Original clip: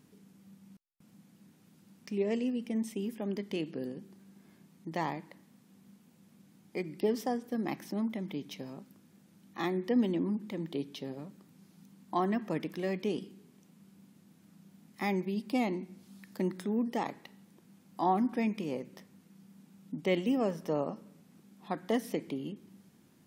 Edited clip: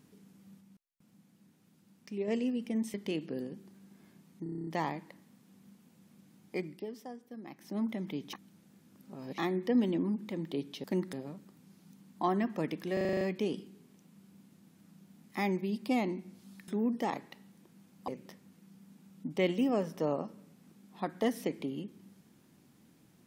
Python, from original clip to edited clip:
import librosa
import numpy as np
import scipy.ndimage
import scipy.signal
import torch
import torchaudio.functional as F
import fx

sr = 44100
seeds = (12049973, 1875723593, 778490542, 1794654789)

y = fx.edit(x, sr, fx.clip_gain(start_s=0.61, length_s=1.67, db=-4.5),
    fx.cut(start_s=2.94, length_s=0.45),
    fx.stutter(start_s=4.88, slice_s=0.03, count=9),
    fx.fade_down_up(start_s=6.82, length_s=1.21, db=-12.5, fade_s=0.24),
    fx.reverse_span(start_s=8.54, length_s=1.05),
    fx.stutter(start_s=12.85, slice_s=0.04, count=8),
    fx.move(start_s=16.32, length_s=0.29, to_s=11.05),
    fx.cut(start_s=18.01, length_s=0.75), tone=tone)